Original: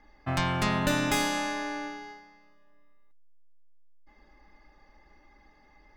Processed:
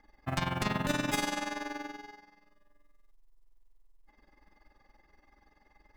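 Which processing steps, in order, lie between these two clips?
AM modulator 21 Hz, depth 60%; short-mantissa float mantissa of 4-bit; trim -1.5 dB

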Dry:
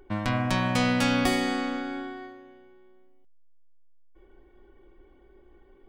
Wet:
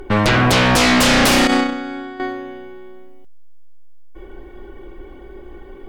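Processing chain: 1.47–2.20 s: gate -27 dBFS, range -13 dB; sine folder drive 15 dB, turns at -10 dBFS

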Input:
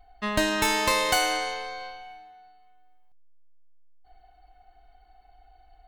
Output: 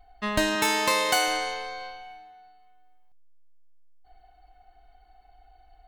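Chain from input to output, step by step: 0.55–1.28 s: high-pass 160 Hz 12 dB/octave

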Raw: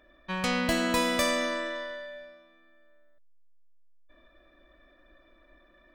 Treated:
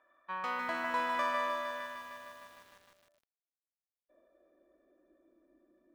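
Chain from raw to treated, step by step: band-pass sweep 1.1 kHz -> 320 Hz, 1.85–5.53 s; bit-crushed delay 153 ms, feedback 80%, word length 10-bit, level -5 dB

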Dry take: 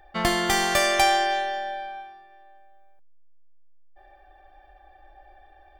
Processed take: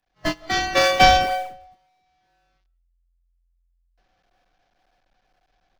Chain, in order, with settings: one-bit delta coder 32 kbps, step -23 dBFS; expander -15 dBFS; spectral noise reduction 23 dB; level rider gain up to 7 dB; in parallel at -10.5 dB: decimation with a swept rate 37×, swing 160% 2 Hz; on the sum: frequency shift -43 Hz; on a send at -22.5 dB: reverberation RT60 0.40 s, pre-delay 120 ms; on the sum: trim +3.5 dB

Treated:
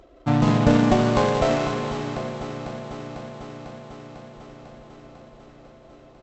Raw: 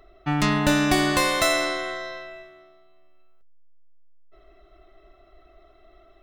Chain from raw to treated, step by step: median filter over 25 samples; high-pass 41 Hz 12 dB/octave; harmony voices -4 st -1 dB; vibrato 13 Hz 8.7 cents; brick-wall FIR low-pass 7.9 kHz; on a send: echo whose repeats swap between lows and highs 249 ms, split 830 Hz, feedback 85%, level -10 dB; on the sum: trim +2.5 dB

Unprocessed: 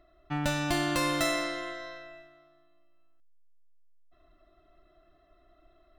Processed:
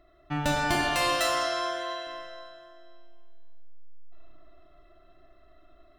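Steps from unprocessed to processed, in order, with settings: 0.75–2.07 s: high-pass 600 Hz 12 dB/octave; reverberation RT60 2.0 s, pre-delay 40 ms, DRR -1 dB; trim +1.5 dB

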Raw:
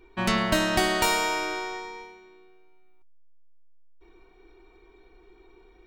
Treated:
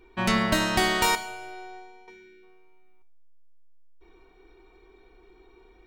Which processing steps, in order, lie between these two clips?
1.15–2.08 s: inharmonic resonator 120 Hz, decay 0.34 s, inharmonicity 0.002; 2.10–2.43 s: spectral selection erased 470–1300 Hz; two-slope reverb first 0.66 s, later 1.8 s, from -26 dB, DRR 10.5 dB

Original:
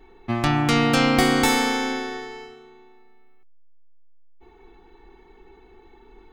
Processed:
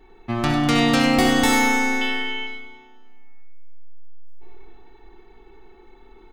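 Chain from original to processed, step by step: 2.01–2.47 s: resonant low-pass 3 kHz, resonance Q 15; feedback delay 99 ms, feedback 60%, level -10 dB; reverberation RT60 0.45 s, pre-delay 25 ms, DRR 4 dB; trim -1 dB

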